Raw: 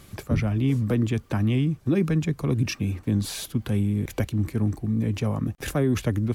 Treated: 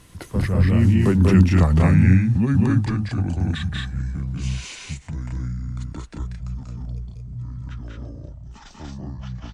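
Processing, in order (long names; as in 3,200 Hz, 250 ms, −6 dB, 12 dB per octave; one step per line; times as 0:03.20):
gliding playback speed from 82% → 51%
source passing by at 0:01.46, 25 m/s, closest 18 metres
loudspeakers that aren't time-aligned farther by 65 metres −2 dB, 76 metres −2 dB
level +6.5 dB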